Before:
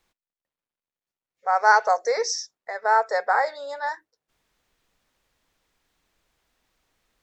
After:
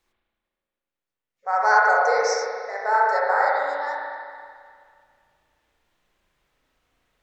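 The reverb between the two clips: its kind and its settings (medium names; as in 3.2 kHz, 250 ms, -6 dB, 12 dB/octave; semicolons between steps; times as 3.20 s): spring tank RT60 2.1 s, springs 35/59 ms, chirp 60 ms, DRR -4.5 dB; trim -3.5 dB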